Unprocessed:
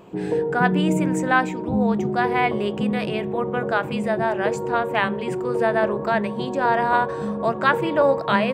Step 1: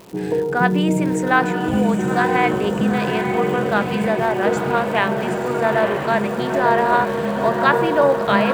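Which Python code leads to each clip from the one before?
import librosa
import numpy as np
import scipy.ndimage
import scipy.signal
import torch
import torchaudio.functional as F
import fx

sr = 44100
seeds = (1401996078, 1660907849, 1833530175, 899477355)

y = fx.dmg_crackle(x, sr, seeds[0], per_s=260.0, level_db=-33.0)
y = fx.echo_diffused(y, sr, ms=909, feedback_pct=62, wet_db=-5.5)
y = y * 10.0 ** (2.0 / 20.0)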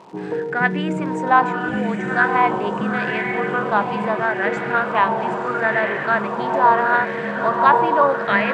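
y = scipy.signal.sosfilt(scipy.signal.butter(2, 130.0, 'highpass', fs=sr, output='sos'), x)
y = fx.air_absorb(y, sr, metres=87.0)
y = fx.bell_lfo(y, sr, hz=0.77, low_hz=900.0, high_hz=2000.0, db=13)
y = y * 10.0 ** (-4.5 / 20.0)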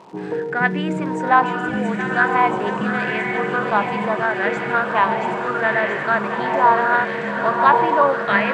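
y = fx.echo_wet_highpass(x, sr, ms=678, feedback_pct=70, hz=2100.0, wet_db=-5)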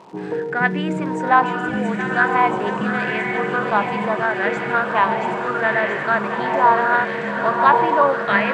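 y = x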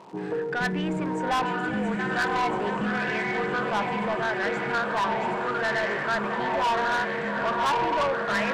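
y = 10.0 ** (-18.0 / 20.0) * np.tanh(x / 10.0 ** (-18.0 / 20.0))
y = y * 10.0 ** (-3.0 / 20.0)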